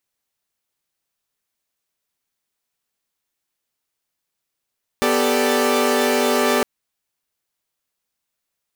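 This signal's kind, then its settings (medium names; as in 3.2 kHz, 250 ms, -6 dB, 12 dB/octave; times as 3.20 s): chord B3/G4/A4/D5 saw, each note -19 dBFS 1.61 s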